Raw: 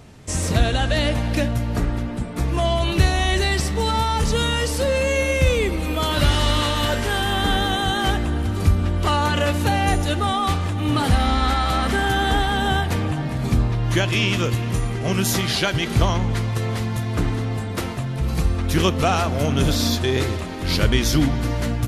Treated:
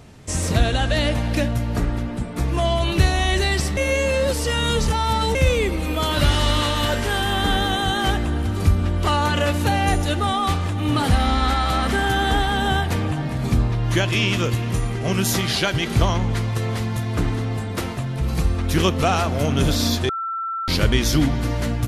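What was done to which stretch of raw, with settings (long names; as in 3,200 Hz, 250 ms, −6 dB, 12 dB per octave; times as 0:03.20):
0:03.77–0:05.35: reverse
0:20.09–0:20.68: beep over 1,340 Hz −23.5 dBFS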